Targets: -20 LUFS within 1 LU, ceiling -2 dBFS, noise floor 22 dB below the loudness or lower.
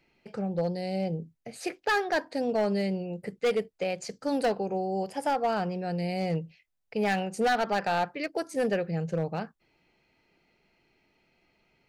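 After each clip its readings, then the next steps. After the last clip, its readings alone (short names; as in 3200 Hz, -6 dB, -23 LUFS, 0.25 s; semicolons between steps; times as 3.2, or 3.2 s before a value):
clipped 1.0%; flat tops at -20.5 dBFS; loudness -30.0 LUFS; peak -20.5 dBFS; loudness target -20.0 LUFS
-> clip repair -20.5 dBFS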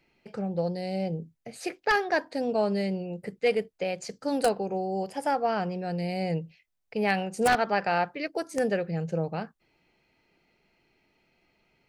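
clipped 0.0%; loudness -29.0 LUFS; peak -11.5 dBFS; loudness target -20.0 LUFS
-> gain +9 dB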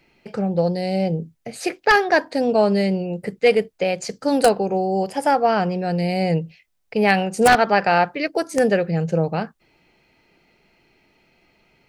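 loudness -20.0 LUFS; peak -2.5 dBFS; noise floor -65 dBFS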